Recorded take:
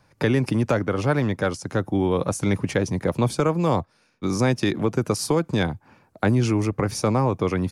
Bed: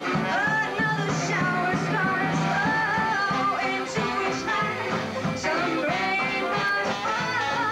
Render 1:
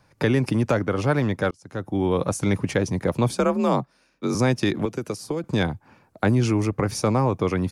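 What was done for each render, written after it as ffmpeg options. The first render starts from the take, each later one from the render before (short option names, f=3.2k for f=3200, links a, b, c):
-filter_complex "[0:a]asettb=1/sr,asplit=3[a][b][c];[a]atrim=end=3.324[d];[b]atrim=start=3.32:end=4.35,asetpts=PTS-STARTPTS,afade=t=in:d=0.004:c=qsin,afade=t=out:st=1.026:d=0.004:c=qsin,afreqshift=44[e];[c]atrim=start=4.346[f];[d][e]acrossfade=d=0.004:c1=hsin:c2=qsin[g];[g][f]acrossfade=d=0.004:c1=qsin:c2=hsin,asettb=1/sr,asplit=3[h][i][j];[h]atrim=end=4.854[k];[i]atrim=start=4.85:end=5.44,asetpts=PTS-STARTPTS,afade=t=in:d=0.004:c=qsin,afade=t=out:st=0.586:d=0.004:c=qsin,acrossover=split=250|590|1700[l][m][n][o];[l]acompressor=threshold=-37dB:ratio=3[p];[m]acompressor=threshold=-27dB:ratio=3[q];[n]acompressor=threshold=-46dB:ratio=3[r];[o]acompressor=threshold=-41dB:ratio=3[s];[p][q][r][s]amix=inputs=4:normalize=0[t];[j]atrim=start=5.436[u];[k][t]acrossfade=d=0.004:c1=hsin:c2=qsin[v];[v][u]acrossfade=d=0.004:c1=qsin:c2=hsin,asplit=2[w][x];[w]atrim=end=1.51,asetpts=PTS-STARTPTS,afade=t=out:st=1.506:d=0.004:c=hsin[y];[x]atrim=start=1.51,asetpts=PTS-STARTPTS,afade=t=in:d=0.58[z];[y][z]concat=n=2:v=0:a=1"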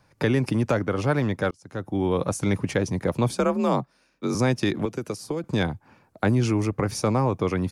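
-af "volume=-1.5dB"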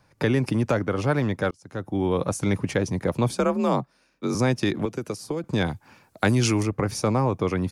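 -filter_complex "[0:a]asettb=1/sr,asplit=3[a][b][c];[a]atrim=end=5.664[d];[b]atrim=start=5.66:end=6.63,asetpts=PTS-STARTPTS,afade=t=in:d=0.004:c=qsin,afade=t=out:st=0.966:d=0.004:c=qsin,highshelf=f=2.1k:g=11.5[e];[c]atrim=start=6.626[f];[d][e]acrossfade=d=0.004:c1=hsin:c2=qsin[g];[g][f]acrossfade=d=0.004:c1=qsin:c2=hsin"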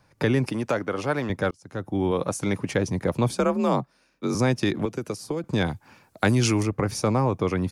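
-filter_complex "[0:a]asettb=1/sr,asplit=3[a][b][c];[a]atrim=end=0.474[d];[b]atrim=start=0.47:end=1.3,asetpts=PTS-STARTPTS,afade=t=in:d=0.004:c=qsin,afade=t=out:st=0.826:d=0.004:c=qsin,highpass=f=310:p=1[e];[c]atrim=start=1.296[f];[d][e]acrossfade=d=0.004:c1=hsin:c2=qsin[g];[g][f]acrossfade=d=0.004:c1=qsin:c2=hsin,asettb=1/sr,asplit=3[h][i][j];[h]atrim=end=2.114[k];[i]atrim=start=2.11:end=2.75,asetpts=PTS-STARTPTS,afade=t=in:d=0.004:c=qsin,afade=t=out:st=0.636:d=0.004:c=qsin,lowshelf=f=100:g=-10.5[l];[j]atrim=start=2.746[m];[k][l]acrossfade=d=0.004:c1=hsin:c2=qsin[n];[n][m]acrossfade=d=0.004:c1=qsin:c2=hsin"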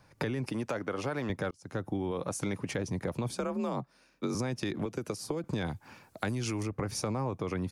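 -af "alimiter=limit=-16dB:level=0:latency=1:release=12,acompressor=threshold=-30dB:ratio=6"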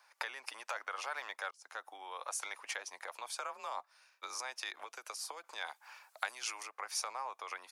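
-af "highpass=f=810:w=0.5412,highpass=f=810:w=1.3066"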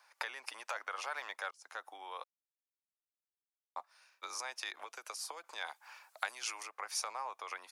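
-filter_complex "[0:a]asplit=3[a][b][c];[a]atrim=end=2.24,asetpts=PTS-STARTPTS,afade=t=out:st=2.236:d=0.004:c=hsin[d];[b]atrim=start=2.24:end=3.76,asetpts=PTS-STARTPTS,volume=0[e];[c]atrim=start=3.76,asetpts=PTS-STARTPTS,afade=t=in:d=0.004:c=hsin[f];[d][e][f]concat=n=3:v=0:a=1"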